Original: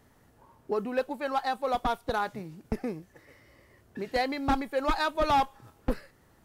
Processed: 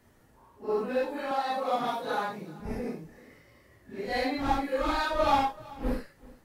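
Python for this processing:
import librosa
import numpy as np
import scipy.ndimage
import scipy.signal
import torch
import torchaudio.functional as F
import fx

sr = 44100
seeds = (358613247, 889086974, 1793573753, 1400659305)

y = fx.phase_scramble(x, sr, seeds[0], window_ms=200)
y = fx.highpass(y, sr, hz=160.0, slope=24, at=(1.31, 2.6))
y = y + 10.0 ** (-21.5 / 20.0) * np.pad(y, (int(384 * sr / 1000.0), 0))[:len(y)]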